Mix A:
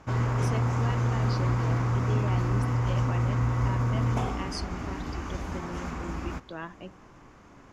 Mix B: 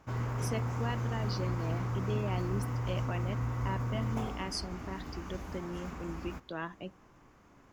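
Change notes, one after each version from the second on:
background -8.0 dB; master: remove low-pass 9.4 kHz 12 dB/octave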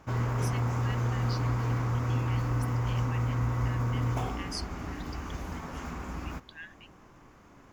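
speech: add brick-wall FIR high-pass 1.5 kHz; background +5.0 dB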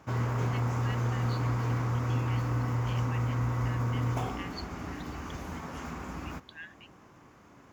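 speech: add brick-wall FIR low-pass 4.6 kHz; master: add high-pass 74 Hz

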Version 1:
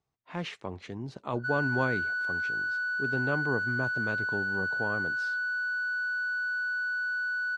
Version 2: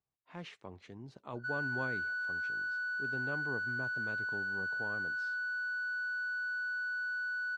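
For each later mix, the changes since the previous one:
speech -10.5 dB; background -5.5 dB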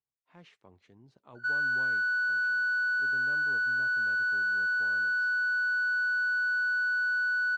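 speech -8.5 dB; background +8.5 dB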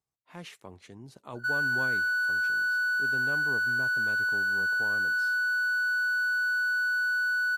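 speech +10.0 dB; master: remove distance through air 130 m

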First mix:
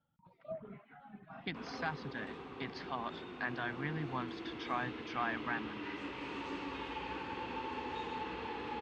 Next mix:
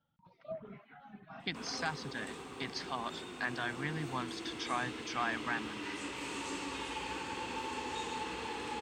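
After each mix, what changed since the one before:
master: remove distance through air 260 m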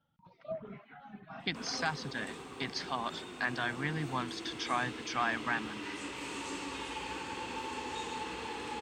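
speech +3.0 dB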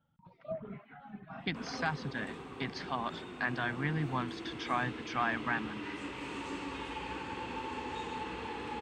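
master: add tone controls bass +4 dB, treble -11 dB

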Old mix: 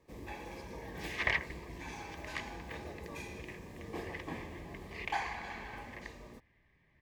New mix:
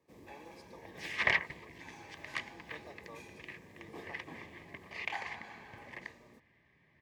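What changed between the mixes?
first sound -7.0 dB; second sound +3.0 dB; master: add high-pass 110 Hz 12 dB/octave

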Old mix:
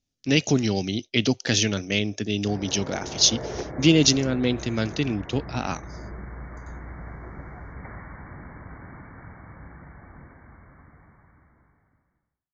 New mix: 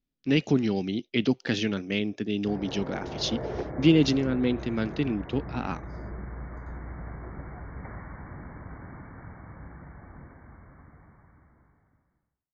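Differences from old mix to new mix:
speech: add fifteen-band graphic EQ 100 Hz -10 dB, 630 Hz -6 dB, 6.3 kHz -12 dB; master: add treble shelf 2.2 kHz -9 dB

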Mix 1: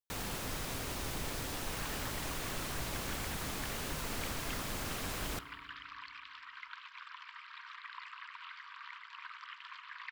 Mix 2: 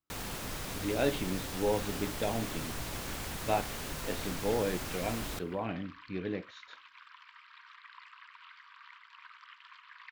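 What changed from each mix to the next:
speech: unmuted; second sound -5.0 dB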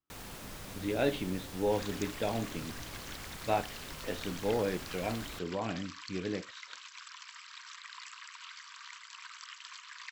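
first sound -6.5 dB; second sound: remove distance through air 410 m

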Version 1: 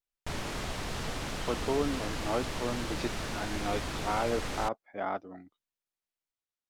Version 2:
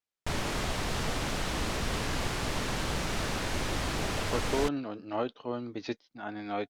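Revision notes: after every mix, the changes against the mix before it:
speech: entry +2.85 s; background +4.0 dB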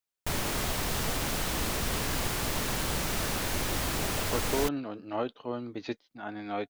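speech: add peaking EQ 5.4 kHz -6.5 dB 0.3 oct; background: remove distance through air 57 m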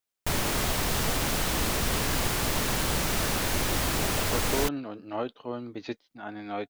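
background +3.5 dB

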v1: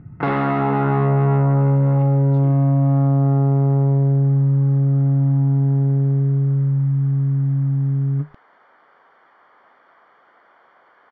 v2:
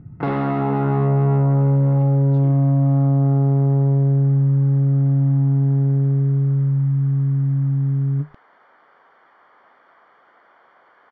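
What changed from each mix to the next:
first sound: add peaking EQ 1.8 kHz -6.5 dB 2.3 oct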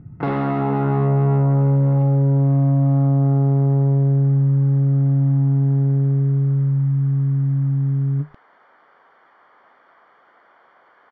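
speech: muted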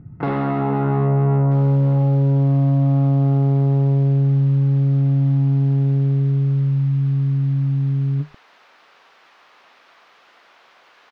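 second sound: remove Savitzky-Golay filter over 41 samples

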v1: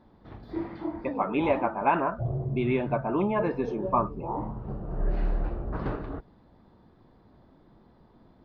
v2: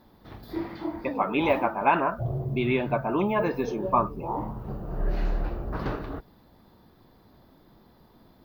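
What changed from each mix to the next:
master: remove tape spacing loss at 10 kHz 23 dB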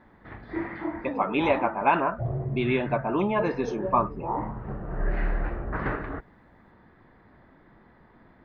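background: add resonant low-pass 1.9 kHz, resonance Q 3.4

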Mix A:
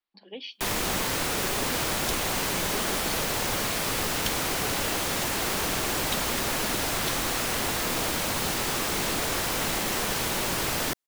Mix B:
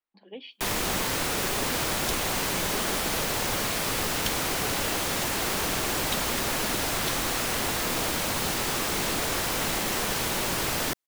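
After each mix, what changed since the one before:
speech: add distance through air 280 m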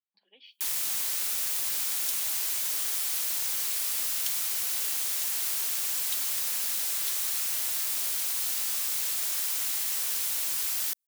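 master: add pre-emphasis filter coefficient 0.97

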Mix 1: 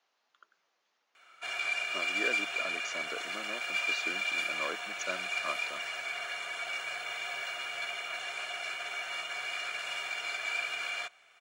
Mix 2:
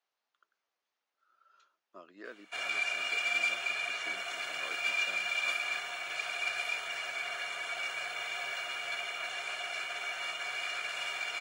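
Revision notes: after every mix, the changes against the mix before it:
speech -10.5 dB; background: entry +1.10 s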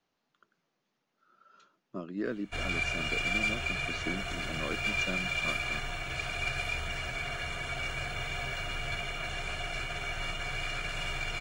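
speech +5.0 dB; master: remove high-pass 660 Hz 12 dB/octave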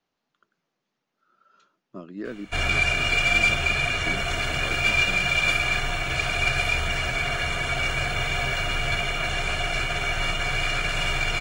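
background +10.0 dB

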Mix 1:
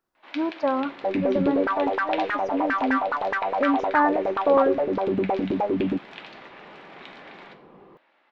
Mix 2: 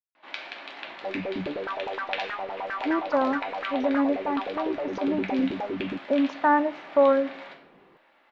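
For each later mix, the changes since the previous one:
speech: entry +2.50 s; first sound: send +6.0 dB; second sound -7.5 dB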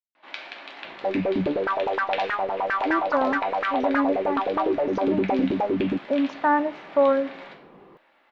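second sound +7.5 dB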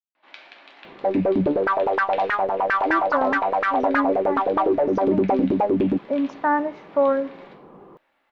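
first sound -7.0 dB; second sound +4.0 dB

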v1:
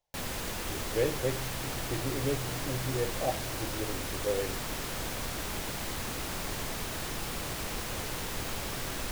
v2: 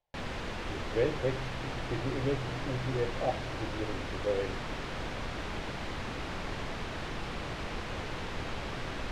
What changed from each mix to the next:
master: add low-pass 3.3 kHz 12 dB/octave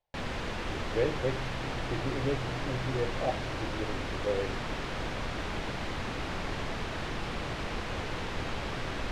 background: send +10.5 dB

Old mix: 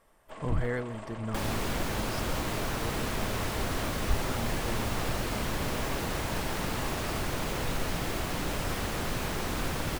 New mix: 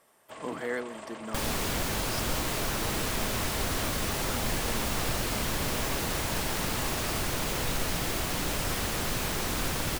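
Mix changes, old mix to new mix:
speech: add high-pass 230 Hz 24 dB/octave; master: add treble shelf 3.2 kHz +7.5 dB

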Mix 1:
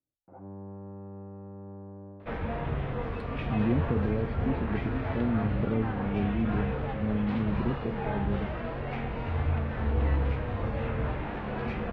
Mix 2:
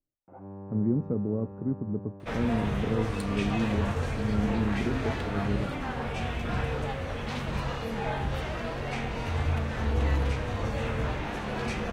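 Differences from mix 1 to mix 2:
speech: entry -2.80 s; master: remove distance through air 410 m

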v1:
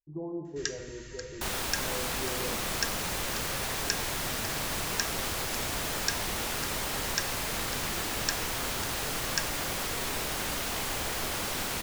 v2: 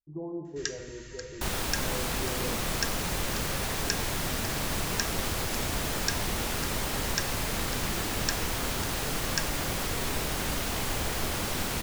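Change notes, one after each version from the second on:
second sound: add bass shelf 310 Hz +7.5 dB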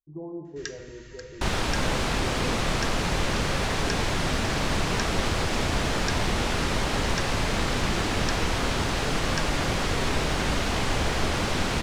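second sound +6.5 dB; master: add distance through air 81 m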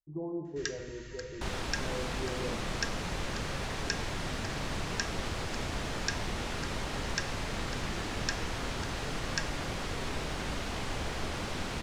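second sound -10.0 dB

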